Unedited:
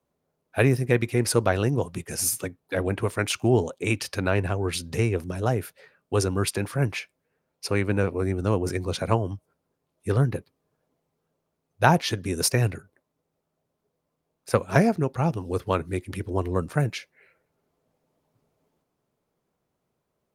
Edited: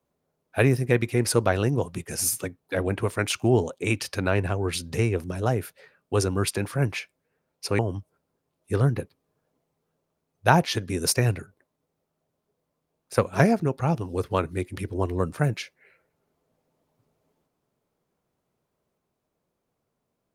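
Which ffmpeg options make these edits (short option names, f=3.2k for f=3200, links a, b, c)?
-filter_complex "[0:a]asplit=2[a][b];[a]atrim=end=7.792[c];[b]atrim=start=9.148[d];[c][d]acrossfade=d=0.004:c1=hsin:c2=hsin"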